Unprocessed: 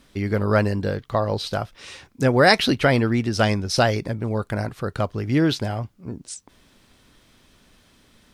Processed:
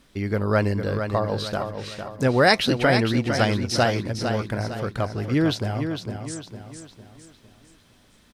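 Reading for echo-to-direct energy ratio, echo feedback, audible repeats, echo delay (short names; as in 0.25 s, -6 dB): -6.5 dB, 42%, 4, 0.455 s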